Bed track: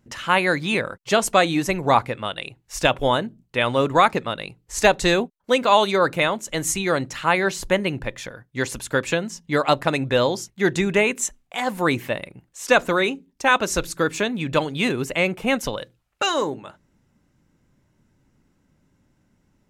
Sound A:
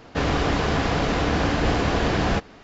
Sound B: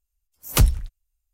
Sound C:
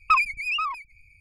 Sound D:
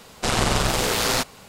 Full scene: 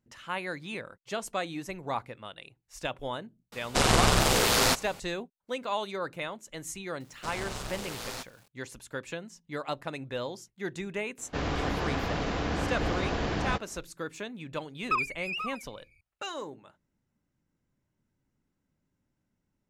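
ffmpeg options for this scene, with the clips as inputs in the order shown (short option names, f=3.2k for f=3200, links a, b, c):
-filter_complex "[4:a]asplit=2[a][b];[0:a]volume=-15.5dB[c];[b]acrusher=bits=6:mix=0:aa=0.000001[d];[a]atrim=end=1.48,asetpts=PTS-STARTPTS,volume=-1.5dB,afade=t=in:d=0.004:c=hsin,afade=t=out:st=1.476:d=0.004:c=hsin,adelay=3520[e];[d]atrim=end=1.48,asetpts=PTS-STARTPTS,volume=-17dB,afade=t=in:d=0.004:c=hsin,afade=t=out:st=1.476:d=0.004:c=hsin,adelay=7000[f];[1:a]atrim=end=2.63,asetpts=PTS-STARTPTS,volume=-8.5dB,afade=t=in:d=0.004:c=hsin,afade=t=out:st=2.626:d=0.004:c=hsin,adelay=11180[g];[3:a]atrim=end=1.2,asetpts=PTS-STARTPTS,volume=-8.5dB,afade=t=in:d=0.004:c=hsin,afade=t=out:st=1.196:d=0.004:c=hsin,adelay=14810[h];[c][e][f][g][h]amix=inputs=5:normalize=0"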